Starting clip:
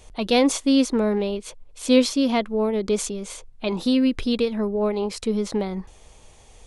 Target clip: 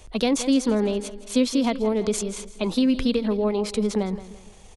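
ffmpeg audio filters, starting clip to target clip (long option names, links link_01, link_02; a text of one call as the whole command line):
ffmpeg -i in.wav -filter_complex "[0:a]aecho=1:1:233|466|699|932:0.168|0.0672|0.0269|0.0107,acrossover=split=230[link_01][link_02];[link_02]acompressor=threshold=-22dB:ratio=5[link_03];[link_01][link_03]amix=inputs=2:normalize=0,atempo=1.4,volume=1.5dB" out.wav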